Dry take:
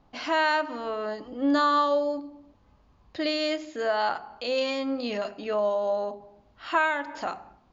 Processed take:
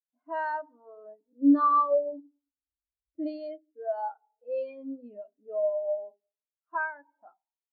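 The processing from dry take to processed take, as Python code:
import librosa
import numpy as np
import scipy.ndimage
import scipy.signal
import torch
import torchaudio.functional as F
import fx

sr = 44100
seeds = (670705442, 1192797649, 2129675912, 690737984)

y = fx.env_lowpass(x, sr, base_hz=820.0, full_db=-20.0)
y = fx.low_shelf(y, sr, hz=250.0, db=7.0, at=(2.12, 3.28))
y = fx.rev_fdn(y, sr, rt60_s=2.9, lf_ratio=1.0, hf_ratio=0.8, size_ms=20.0, drr_db=19.0)
y = fx.spectral_expand(y, sr, expansion=2.5)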